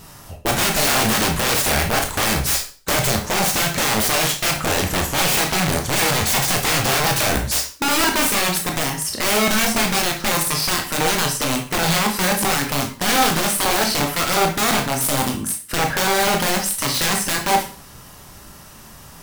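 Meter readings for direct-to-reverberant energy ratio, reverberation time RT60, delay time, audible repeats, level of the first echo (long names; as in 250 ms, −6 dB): 1.5 dB, 0.40 s, no echo audible, no echo audible, no echo audible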